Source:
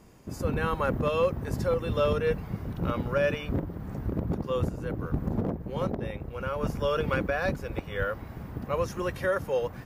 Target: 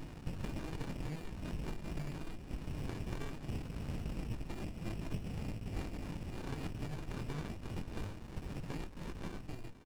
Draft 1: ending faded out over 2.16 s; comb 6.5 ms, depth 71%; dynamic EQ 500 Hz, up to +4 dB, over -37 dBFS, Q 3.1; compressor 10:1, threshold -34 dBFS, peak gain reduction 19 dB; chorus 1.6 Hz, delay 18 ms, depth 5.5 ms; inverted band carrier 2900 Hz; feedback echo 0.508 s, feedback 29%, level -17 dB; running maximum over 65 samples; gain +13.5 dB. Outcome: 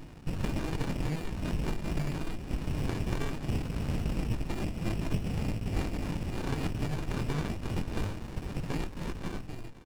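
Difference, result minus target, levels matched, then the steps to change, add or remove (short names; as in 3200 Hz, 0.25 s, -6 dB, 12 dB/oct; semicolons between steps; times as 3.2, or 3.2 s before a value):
compressor: peak gain reduction -9 dB
change: compressor 10:1, threshold -44 dBFS, peak gain reduction 28 dB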